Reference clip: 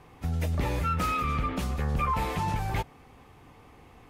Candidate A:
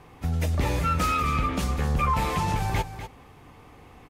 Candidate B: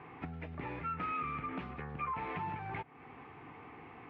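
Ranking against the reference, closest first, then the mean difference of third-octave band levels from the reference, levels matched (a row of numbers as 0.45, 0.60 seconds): A, B; 2.0, 8.5 decibels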